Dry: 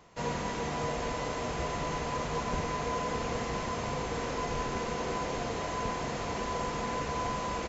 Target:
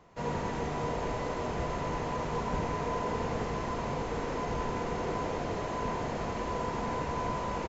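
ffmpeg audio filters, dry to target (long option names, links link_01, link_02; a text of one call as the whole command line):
ffmpeg -i in.wav -filter_complex "[0:a]highshelf=frequency=2400:gain=-9,asplit=2[link_01][link_02];[link_02]asplit=8[link_03][link_04][link_05][link_06][link_07][link_08][link_09][link_10];[link_03]adelay=87,afreqshift=-53,volume=-7dB[link_11];[link_04]adelay=174,afreqshift=-106,volume=-11.2dB[link_12];[link_05]adelay=261,afreqshift=-159,volume=-15.3dB[link_13];[link_06]adelay=348,afreqshift=-212,volume=-19.5dB[link_14];[link_07]adelay=435,afreqshift=-265,volume=-23.6dB[link_15];[link_08]adelay=522,afreqshift=-318,volume=-27.8dB[link_16];[link_09]adelay=609,afreqshift=-371,volume=-31.9dB[link_17];[link_10]adelay=696,afreqshift=-424,volume=-36.1dB[link_18];[link_11][link_12][link_13][link_14][link_15][link_16][link_17][link_18]amix=inputs=8:normalize=0[link_19];[link_01][link_19]amix=inputs=2:normalize=0" out.wav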